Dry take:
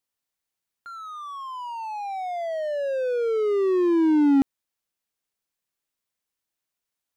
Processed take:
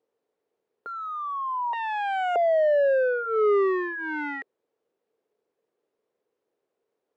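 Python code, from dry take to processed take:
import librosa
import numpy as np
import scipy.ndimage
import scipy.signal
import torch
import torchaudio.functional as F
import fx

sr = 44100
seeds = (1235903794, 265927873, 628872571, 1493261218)

y = fx.self_delay(x, sr, depth_ms=0.86, at=(1.73, 2.36))
y = fx.fold_sine(y, sr, drive_db=17, ceiling_db=-11.5)
y = fx.bandpass_q(y, sr, hz=440.0, q=5.2)
y = y * librosa.db_to_amplitude(6.5)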